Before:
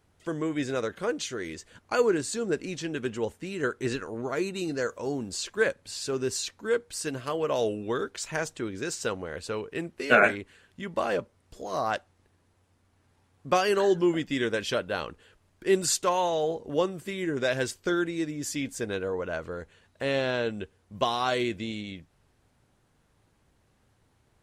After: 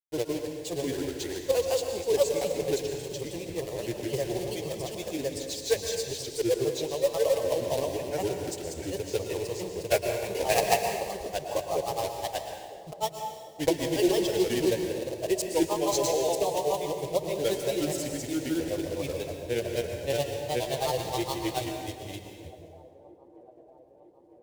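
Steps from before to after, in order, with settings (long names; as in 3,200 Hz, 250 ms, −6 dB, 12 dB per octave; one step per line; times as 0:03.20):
one scale factor per block 3 bits
high-pass filter 41 Hz
mains-hum notches 50/100/150 Hz
downward expander −57 dBFS
low-shelf EQ 310 Hz +8.5 dB
phaser with its sweep stopped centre 550 Hz, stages 4
granular cloud, grains 19 per second, spray 612 ms, pitch spread up and down by 3 semitones
delay with a band-pass on its return 955 ms, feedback 65%, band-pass 400 Hz, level −19 dB
dense smooth reverb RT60 1.6 s, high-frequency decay 0.8×, pre-delay 100 ms, DRR 4 dB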